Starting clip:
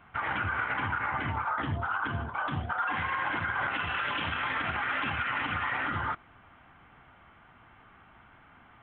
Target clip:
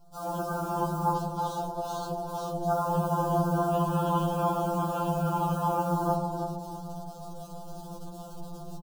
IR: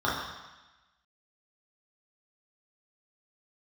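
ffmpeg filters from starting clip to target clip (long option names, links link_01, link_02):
-filter_complex "[0:a]aemphasis=mode=reproduction:type=riaa,alimiter=limit=-23.5dB:level=0:latency=1:release=25,dynaudnorm=framelen=190:gausssize=3:maxgain=12dB,acrusher=bits=7:dc=4:mix=0:aa=0.000001,asettb=1/sr,asplit=3[link_01][link_02][link_03];[link_01]atrim=end=1.144[link_04];[link_02]atrim=start=1.14:end=2.63,asetpts=PTS-STARTPTS,afade=type=in:duration=0.004:curve=qsin,afade=type=out:start_time=1.486:duration=0.004:curve=qsin,asoftclip=type=hard:threshold=-25.5dB[link_05];[link_03]atrim=start=2.626[link_06];[link_04][link_05]acrossfade=duration=0.004:curve1=hsin:curve2=qsin[link_07];[link_07][link_06]acrossfade=duration=0.004:curve1=qsin:curve2=hsin,asuperstop=centerf=2000:order=4:qfactor=0.62,asplit=2[link_08][link_09];[link_09]adelay=332,lowpass=frequency=830:poles=1,volume=-4dB,asplit=2[link_10][link_11];[link_11]adelay=332,lowpass=frequency=830:poles=1,volume=0.42,asplit=2[link_12][link_13];[link_13]adelay=332,lowpass=frequency=830:poles=1,volume=0.42,asplit=2[link_14][link_15];[link_15]adelay=332,lowpass=frequency=830:poles=1,volume=0.42,asplit=2[link_16][link_17];[link_17]adelay=332,lowpass=frequency=830:poles=1,volume=0.42[link_18];[link_08][link_10][link_12][link_14][link_16][link_18]amix=inputs=6:normalize=0,asplit=2[link_19][link_20];[1:a]atrim=start_sample=2205,asetrate=25137,aresample=44100,lowpass=3400[link_21];[link_20][link_21]afir=irnorm=-1:irlink=0,volume=-20dB[link_22];[link_19][link_22]amix=inputs=2:normalize=0,afftfilt=real='re*2.83*eq(mod(b,8),0)':imag='im*2.83*eq(mod(b,8),0)':win_size=2048:overlap=0.75,volume=-2.5dB"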